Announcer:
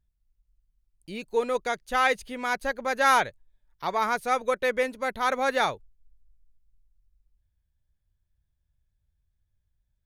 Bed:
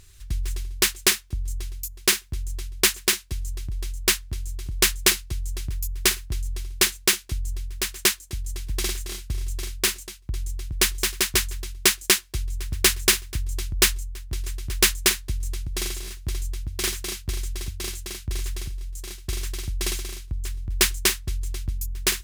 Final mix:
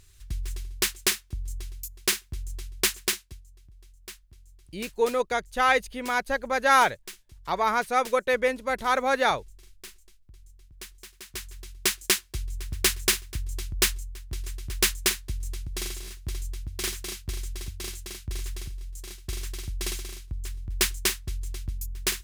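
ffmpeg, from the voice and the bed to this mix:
ffmpeg -i stem1.wav -i stem2.wav -filter_complex "[0:a]adelay=3650,volume=1.5dB[link_01];[1:a]volume=13dB,afade=type=out:start_time=3.08:duration=0.34:silence=0.133352,afade=type=in:start_time=11.22:duration=0.84:silence=0.125893[link_02];[link_01][link_02]amix=inputs=2:normalize=0" out.wav

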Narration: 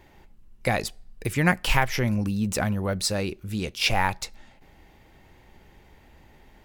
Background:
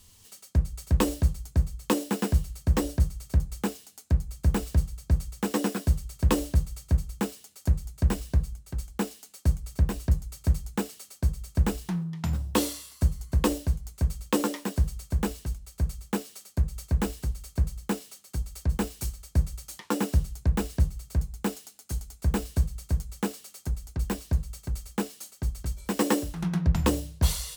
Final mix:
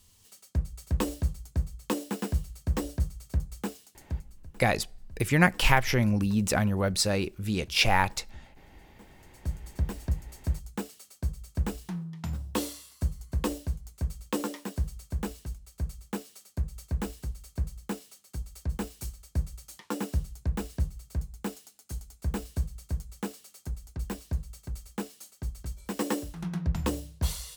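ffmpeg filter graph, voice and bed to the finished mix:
ffmpeg -i stem1.wav -i stem2.wav -filter_complex "[0:a]adelay=3950,volume=0dB[link_01];[1:a]volume=15.5dB,afade=type=out:start_time=3.83:duration=0.64:silence=0.0891251,afade=type=in:start_time=9.11:duration=0.59:silence=0.0944061[link_02];[link_01][link_02]amix=inputs=2:normalize=0" out.wav

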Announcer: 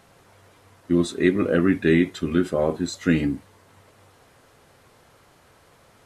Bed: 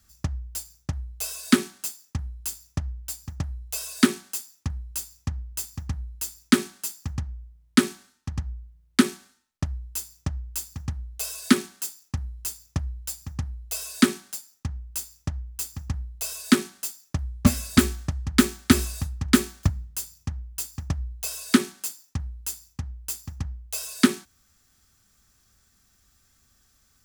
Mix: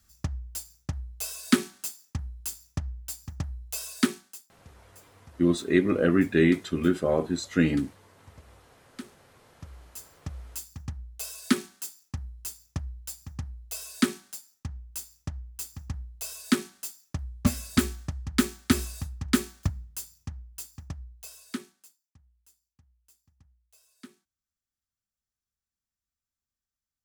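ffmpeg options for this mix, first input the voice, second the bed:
ffmpeg -i stem1.wav -i stem2.wav -filter_complex "[0:a]adelay=4500,volume=-2.5dB[link_01];[1:a]volume=14.5dB,afade=type=out:start_time=3.87:duration=0.63:silence=0.1,afade=type=in:start_time=9.43:duration=1.24:silence=0.133352,afade=type=out:start_time=19.98:duration=2.02:silence=0.0595662[link_02];[link_01][link_02]amix=inputs=2:normalize=0" out.wav

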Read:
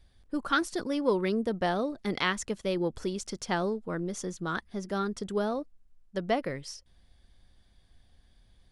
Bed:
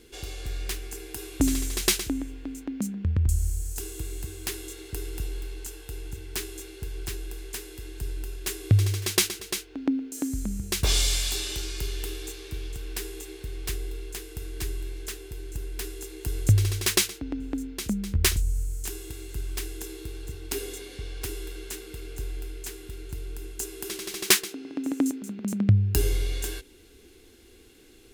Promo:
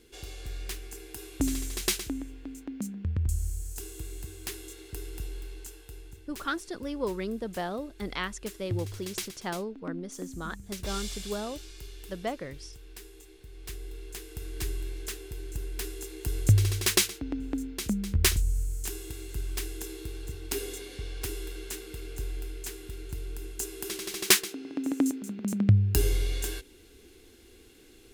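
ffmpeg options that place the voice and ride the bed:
ffmpeg -i stem1.wav -i stem2.wav -filter_complex "[0:a]adelay=5950,volume=-5dB[link_01];[1:a]volume=7dB,afade=type=out:start_time=5.56:duration=0.73:silence=0.398107,afade=type=in:start_time=13.47:duration=1.2:silence=0.251189[link_02];[link_01][link_02]amix=inputs=2:normalize=0" out.wav

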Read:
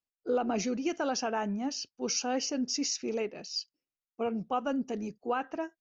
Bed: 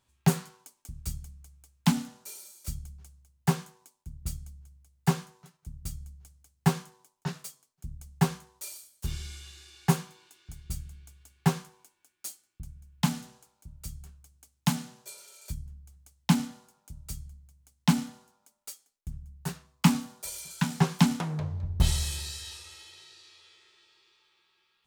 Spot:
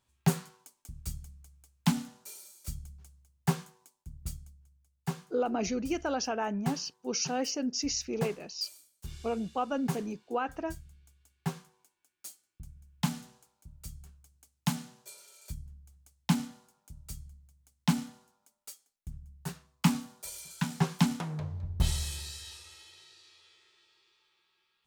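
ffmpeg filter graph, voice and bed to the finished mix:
ffmpeg -i stem1.wav -i stem2.wav -filter_complex "[0:a]adelay=5050,volume=-0.5dB[link_01];[1:a]volume=2.5dB,afade=type=out:start_time=4.23:duration=0.35:silence=0.473151,afade=type=in:start_time=11.62:duration=1.18:silence=0.530884[link_02];[link_01][link_02]amix=inputs=2:normalize=0" out.wav

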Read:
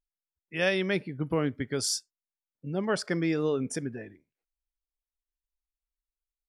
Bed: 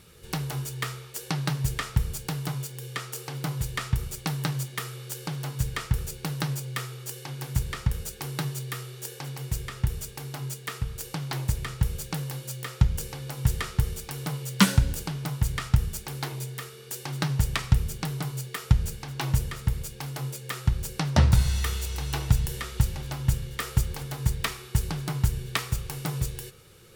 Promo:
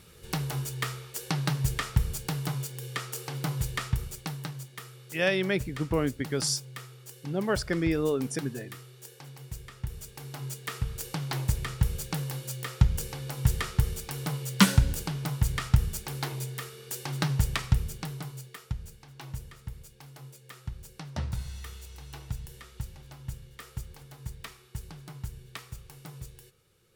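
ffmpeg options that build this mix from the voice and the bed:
ffmpeg -i stem1.wav -i stem2.wav -filter_complex "[0:a]adelay=4600,volume=0.5dB[link_01];[1:a]volume=9dB,afade=type=out:start_time=3.67:duration=0.86:silence=0.334965,afade=type=in:start_time=9.81:duration=1.04:silence=0.334965,afade=type=out:start_time=17.24:duration=1.49:silence=0.211349[link_02];[link_01][link_02]amix=inputs=2:normalize=0" out.wav

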